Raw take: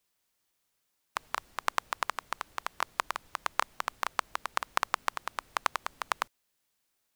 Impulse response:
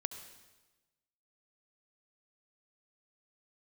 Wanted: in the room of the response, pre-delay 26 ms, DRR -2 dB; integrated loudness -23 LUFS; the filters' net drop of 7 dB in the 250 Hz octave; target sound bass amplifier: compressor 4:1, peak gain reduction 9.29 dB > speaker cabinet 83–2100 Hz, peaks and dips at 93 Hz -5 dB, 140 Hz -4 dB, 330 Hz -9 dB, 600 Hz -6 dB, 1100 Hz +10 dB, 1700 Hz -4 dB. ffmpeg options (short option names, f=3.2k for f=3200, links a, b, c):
-filter_complex "[0:a]equalizer=f=250:t=o:g=-4,asplit=2[a][b];[1:a]atrim=start_sample=2205,adelay=26[c];[b][c]afir=irnorm=-1:irlink=0,volume=2.5dB[d];[a][d]amix=inputs=2:normalize=0,acompressor=threshold=-28dB:ratio=4,highpass=f=83:w=0.5412,highpass=f=83:w=1.3066,equalizer=f=93:t=q:w=4:g=-5,equalizer=f=140:t=q:w=4:g=-4,equalizer=f=330:t=q:w=4:g=-9,equalizer=f=600:t=q:w=4:g=-6,equalizer=f=1.1k:t=q:w=4:g=10,equalizer=f=1.7k:t=q:w=4:g=-4,lowpass=f=2.1k:w=0.5412,lowpass=f=2.1k:w=1.3066,volume=9dB"